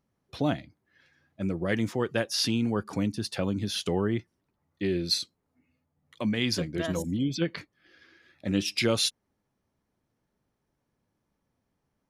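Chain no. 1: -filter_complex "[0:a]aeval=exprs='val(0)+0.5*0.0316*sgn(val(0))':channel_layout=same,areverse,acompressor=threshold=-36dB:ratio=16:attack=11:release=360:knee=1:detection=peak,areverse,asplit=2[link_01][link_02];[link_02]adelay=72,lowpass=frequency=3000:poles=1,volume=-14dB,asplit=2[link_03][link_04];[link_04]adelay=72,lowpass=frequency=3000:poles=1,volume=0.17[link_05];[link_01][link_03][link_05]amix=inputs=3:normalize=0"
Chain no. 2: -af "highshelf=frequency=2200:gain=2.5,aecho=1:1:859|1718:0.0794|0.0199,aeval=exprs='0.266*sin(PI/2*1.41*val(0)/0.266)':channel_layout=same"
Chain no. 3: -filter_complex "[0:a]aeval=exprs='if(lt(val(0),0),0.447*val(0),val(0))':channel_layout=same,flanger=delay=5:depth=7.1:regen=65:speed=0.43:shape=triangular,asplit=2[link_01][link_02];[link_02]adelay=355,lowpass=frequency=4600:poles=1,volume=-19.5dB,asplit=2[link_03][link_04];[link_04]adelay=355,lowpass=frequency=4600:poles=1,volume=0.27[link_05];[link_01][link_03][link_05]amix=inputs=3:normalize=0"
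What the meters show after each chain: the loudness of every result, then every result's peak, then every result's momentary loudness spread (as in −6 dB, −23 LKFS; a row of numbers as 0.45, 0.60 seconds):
−37.5, −22.5, −35.5 LKFS; −26.0, −11.5, −16.0 dBFS; 5, 20, 15 LU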